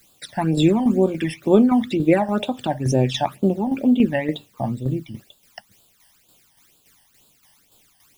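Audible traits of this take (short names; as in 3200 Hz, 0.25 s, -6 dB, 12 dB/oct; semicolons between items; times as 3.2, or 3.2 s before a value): a quantiser's noise floor 10-bit, dither triangular; phasing stages 12, 2.1 Hz, lowest notch 400–2000 Hz; tremolo saw down 3.5 Hz, depth 55%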